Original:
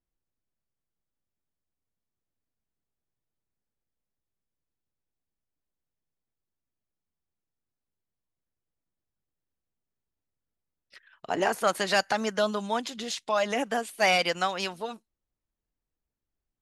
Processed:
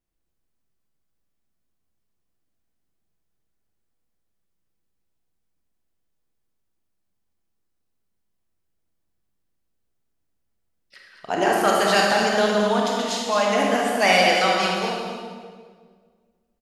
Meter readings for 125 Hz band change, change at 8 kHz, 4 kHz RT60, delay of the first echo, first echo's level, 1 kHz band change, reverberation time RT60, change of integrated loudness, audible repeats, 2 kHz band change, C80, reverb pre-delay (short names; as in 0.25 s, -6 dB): +9.5 dB, +7.0 dB, 1.4 s, 0.221 s, -7.5 dB, +8.0 dB, 1.7 s, +7.5 dB, 1, +7.5 dB, 0.5 dB, 26 ms